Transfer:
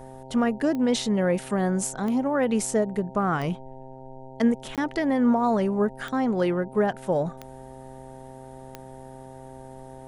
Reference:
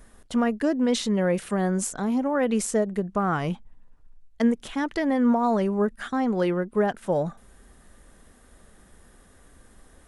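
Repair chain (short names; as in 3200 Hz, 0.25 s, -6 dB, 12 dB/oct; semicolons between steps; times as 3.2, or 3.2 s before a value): de-click; de-hum 131.4 Hz, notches 7; interpolate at 4.76, 17 ms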